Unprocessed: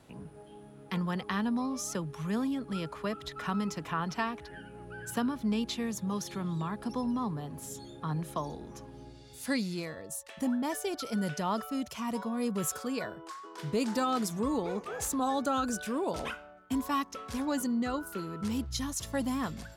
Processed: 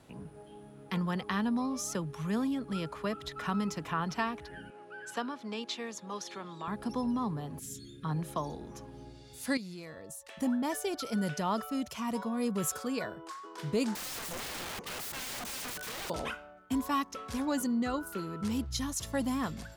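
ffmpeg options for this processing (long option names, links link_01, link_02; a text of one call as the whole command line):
ffmpeg -i in.wav -filter_complex "[0:a]asettb=1/sr,asplit=3[link_01][link_02][link_03];[link_01]atrim=end=4.704[link_04];[link_02]atrim=start=4.7:end=6.68,asetpts=PTS-STARTPTS,afade=type=in:duration=0.004:curve=qsin,afade=type=out:start_time=1.976:duration=0.004:curve=qsin,highpass=410,lowpass=6700[link_05];[link_03]atrim=start=6.676[link_06];[link_04][link_05]acrossfade=duration=0.004:curve1=hsin:curve2=qsin[link_07];[link_07][link_06]acrossfade=duration=0.004:curve1=qsin:curve2=hsin,asettb=1/sr,asplit=3[link_08][link_09][link_10];[link_08]atrim=end=7.594[link_11];[link_09]atrim=start=7.59:end=8.05,asetpts=PTS-STARTPTS,afade=type=in:duration=0.004:curve=qsin,afade=type=out:start_time=0.456:duration=0.004:curve=qsin,asuperstop=centerf=780:order=4:qfactor=0.52[link_12];[link_10]atrim=start=8.046[link_13];[link_11][link_12]acrossfade=duration=0.004:curve1=hsin:curve2=qsin[link_14];[link_14][link_13]acrossfade=duration=0.004:curve1=qsin:curve2=hsin,asettb=1/sr,asplit=3[link_15][link_16][link_17];[link_15]atrim=end=9.574[link_18];[link_16]atrim=start=9.57:end=10.39,asetpts=PTS-STARTPTS,afade=type=in:duration=0.004:curve=qsin,afade=type=out:start_time=0.816:duration=0.004:curve=qsin,acompressor=threshold=-43dB:ratio=3:attack=3.2:release=140:knee=1:detection=peak[link_19];[link_17]atrim=start=10.386[link_20];[link_18][link_19]acrossfade=duration=0.004:curve1=hsin:curve2=qsin[link_21];[link_21][link_20]acrossfade=duration=0.004:curve1=qsin:curve2=hsin,asettb=1/sr,asplit=3[link_22][link_23][link_24];[link_22]atrim=end=13.954[link_25];[link_23]atrim=start=13.95:end=16.1,asetpts=PTS-STARTPTS,afade=type=in:duration=0.004:curve=qsin,afade=type=out:start_time=2.146:duration=0.004:curve=qsin,aeval=exprs='(mod(56.2*val(0)+1,2)-1)/56.2':channel_layout=same[link_26];[link_24]atrim=start=16.096[link_27];[link_25][link_26]acrossfade=duration=0.004:curve1=hsin:curve2=qsin[link_28];[link_28][link_27]acrossfade=duration=0.004:curve1=qsin:curve2=hsin" out.wav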